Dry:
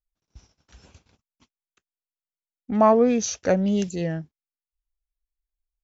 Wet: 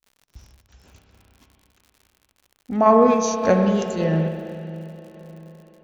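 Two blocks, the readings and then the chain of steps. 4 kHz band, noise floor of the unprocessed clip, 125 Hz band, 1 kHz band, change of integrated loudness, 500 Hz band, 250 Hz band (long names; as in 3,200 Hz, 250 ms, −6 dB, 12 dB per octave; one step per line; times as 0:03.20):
+1.0 dB, below −85 dBFS, +5.5 dB, +5.0 dB, +3.0 dB, +3.5 dB, +2.5 dB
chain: spring reverb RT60 3.6 s, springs 31/43 ms, chirp 65 ms, DRR 2.5 dB
sample-and-hold tremolo
surface crackle 80 per second −44 dBFS
level +3.5 dB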